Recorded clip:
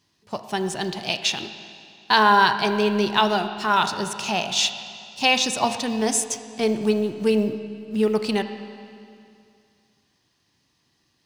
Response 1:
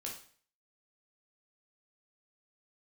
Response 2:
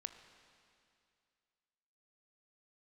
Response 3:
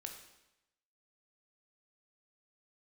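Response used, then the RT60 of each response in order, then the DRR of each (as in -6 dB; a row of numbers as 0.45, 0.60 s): 2; 0.45, 2.4, 0.90 s; -2.0, 8.5, 3.0 dB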